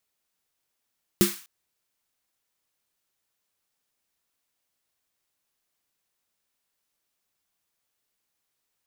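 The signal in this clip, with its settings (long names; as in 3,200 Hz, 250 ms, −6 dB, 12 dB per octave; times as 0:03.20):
synth snare length 0.25 s, tones 200 Hz, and 350 Hz, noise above 1,100 Hz, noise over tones −6.5 dB, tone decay 0.19 s, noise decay 0.44 s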